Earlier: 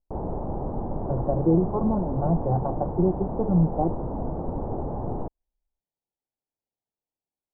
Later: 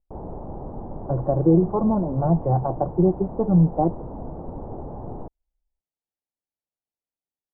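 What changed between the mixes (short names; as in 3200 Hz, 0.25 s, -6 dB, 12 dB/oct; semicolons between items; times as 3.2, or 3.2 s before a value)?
speech +4.0 dB; background -4.5 dB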